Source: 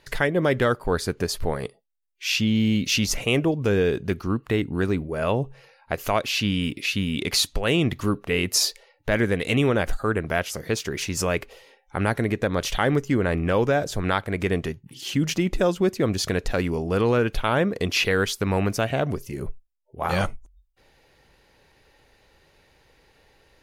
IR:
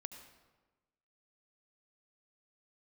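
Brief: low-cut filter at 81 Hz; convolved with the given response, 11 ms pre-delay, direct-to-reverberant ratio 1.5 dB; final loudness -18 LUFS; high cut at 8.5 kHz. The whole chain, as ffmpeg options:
-filter_complex "[0:a]highpass=81,lowpass=8500,asplit=2[s0][s1];[1:a]atrim=start_sample=2205,adelay=11[s2];[s1][s2]afir=irnorm=-1:irlink=0,volume=1.33[s3];[s0][s3]amix=inputs=2:normalize=0,volume=1.58"

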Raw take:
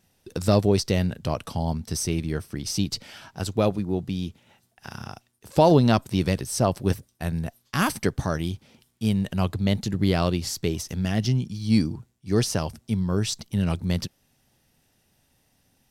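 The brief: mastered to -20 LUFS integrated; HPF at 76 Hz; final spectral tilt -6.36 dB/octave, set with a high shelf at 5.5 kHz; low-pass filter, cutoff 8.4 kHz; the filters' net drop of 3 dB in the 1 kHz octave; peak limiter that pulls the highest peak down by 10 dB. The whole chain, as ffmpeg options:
-af "highpass=76,lowpass=8400,equalizer=f=1000:t=o:g=-4,highshelf=f=5500:g=-5,volume=2.99,alimiter=limit=0.473:level=0:latency=1"

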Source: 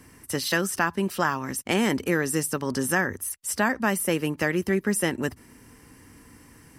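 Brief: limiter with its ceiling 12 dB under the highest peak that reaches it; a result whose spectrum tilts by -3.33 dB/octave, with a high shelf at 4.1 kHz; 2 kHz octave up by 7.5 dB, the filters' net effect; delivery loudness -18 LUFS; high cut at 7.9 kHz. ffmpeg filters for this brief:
-af "lowpass=7900,equalizer=f=2000:t=o:g=8.5,highshelf=f=4100:g=3,volume=2.99,alimiter=limit=0.473:level=0:latency=1"

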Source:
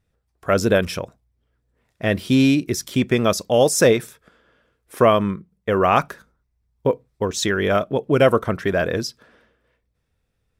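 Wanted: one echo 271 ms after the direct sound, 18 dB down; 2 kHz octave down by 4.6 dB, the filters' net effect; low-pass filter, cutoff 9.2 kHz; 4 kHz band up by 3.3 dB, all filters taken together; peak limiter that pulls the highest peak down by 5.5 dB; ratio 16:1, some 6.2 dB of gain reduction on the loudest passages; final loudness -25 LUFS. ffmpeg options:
-af "lowpass=9200,equalizer=f=2000:t=o:g=-8,equalizer=f=4000:t=o:g=7,acompressor=threshold=0.158:ratio=16,alimiter=limit=0.224:level=0:latency=1,aecho=1:1:271:0.126,volume=0.944"

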